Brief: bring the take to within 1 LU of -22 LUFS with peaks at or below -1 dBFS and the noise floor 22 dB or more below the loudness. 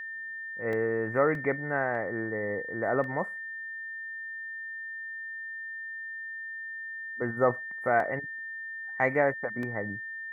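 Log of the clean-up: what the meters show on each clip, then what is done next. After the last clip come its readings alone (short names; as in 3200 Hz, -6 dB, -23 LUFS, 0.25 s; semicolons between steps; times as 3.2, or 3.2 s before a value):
dropouts 6; longest dropout 1.7 ms; steady tone 1800 Hz; tone level -36 dBFS; loudness -31.5 LUFS; peak -11.0 dBFS; loudness target -22.0 LUFS
-> interpolate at 0.73/1.35/1.95/3.04/8/9.63, 1.7 ms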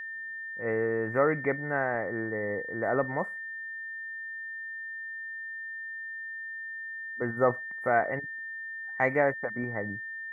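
dropouts 0; steady tone 1800 Hz; tone level -36 dBFS
-> notch 1800 Hz, Q 30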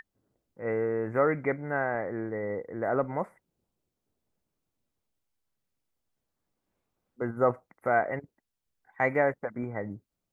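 steady tone none; loudness -30.0 LUFS; peak -11.0 dBFS; loudness target -22.0 LUFS
-> gain +8 dB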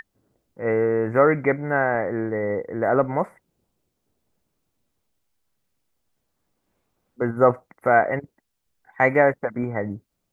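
loudness -22.0 LUFS; peak -3.0 dBFS; noise floor -77 dBFS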